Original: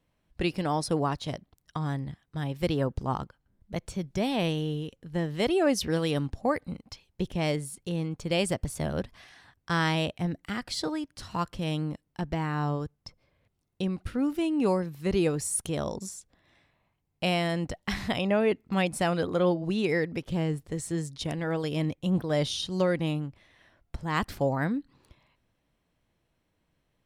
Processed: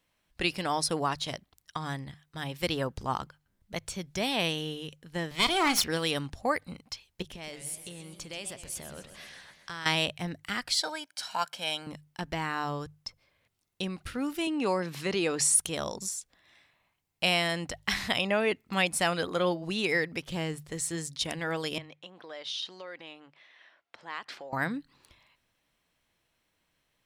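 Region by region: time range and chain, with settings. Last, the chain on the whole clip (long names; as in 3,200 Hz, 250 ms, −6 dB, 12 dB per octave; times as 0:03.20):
0:05.31–0:05.84: lower of the sound and its delayed copy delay 0.9 ms + parametric band 4,200 Hz +3 dB 1.9 octaves + double-tracking delay 39 ms −14 dB
0:07.22–0:09.86: downward compressor 4 to 1, threshold −38 dBFS + feedback echo with a swinging delay time 129 ms, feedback 64%, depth 192 cents, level −11 dB
0:10.81–0:11.87: high-pass filter 380 Hz + comb filter 1.3 ms, depth 61%
0:14.47–0:15.55: high-pass filter 180 Hz + high-frequency loss of the air 57 metres + envelope flattener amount 50%
0:21.78–0:24.53: downward compressor 12 to 1, threshold −33 dBFS + band-pass filter 410–3,900 Hz
whole clip: tilt shelving filter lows −6.5 dB, about 860 Hz; mains-hum notches 50/100/150 Hz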